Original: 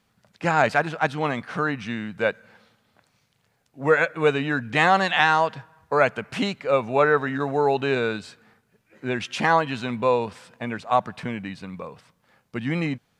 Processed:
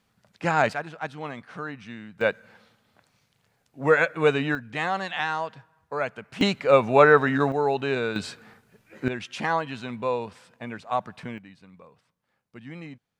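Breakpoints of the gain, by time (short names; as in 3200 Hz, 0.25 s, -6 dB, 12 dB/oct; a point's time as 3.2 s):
-2 dB
from 0.73 s -10 dB
from 2.21 s -0.5 dB
from 4.55 s -9 dB
from 6.41 s +3.5 dB
from 7.52 s -3 dB
from 8.16 s +6 dB
from 9.08 s -6 dB
from 11.38 s -14.5 dB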